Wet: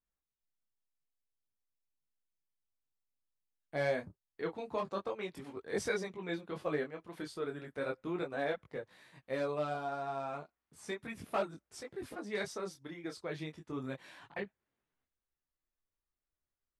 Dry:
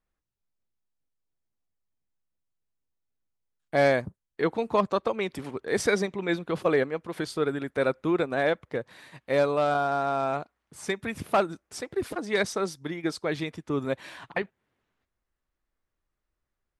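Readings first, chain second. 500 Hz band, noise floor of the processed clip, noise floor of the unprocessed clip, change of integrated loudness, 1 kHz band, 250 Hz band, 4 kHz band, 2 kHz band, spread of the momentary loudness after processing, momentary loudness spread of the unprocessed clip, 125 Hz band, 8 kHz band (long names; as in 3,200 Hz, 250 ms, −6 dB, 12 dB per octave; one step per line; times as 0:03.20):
−11.5 dB, below −85 dBFS, −84 dBFS, −11.5 dB, −12.0 dB, −11.5 dB, −11.0 dB, −11.0 dB, 11 LU, 10 LU, −10.5 dB, −11.0 dB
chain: micro pitch shift up and down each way 12 cents
level −7.5 dB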